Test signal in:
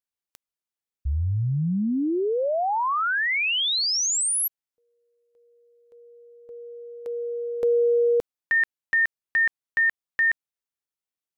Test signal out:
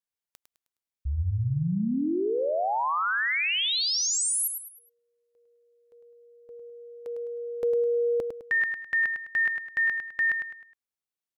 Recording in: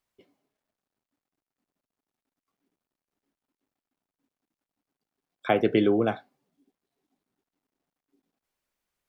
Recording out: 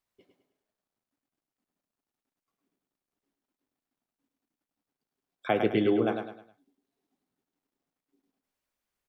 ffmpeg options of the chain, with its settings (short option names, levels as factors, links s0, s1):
-af "aecho=1:1:104|208|312|416:0.473|0.17|0.0613|0.0221,volume=0.668"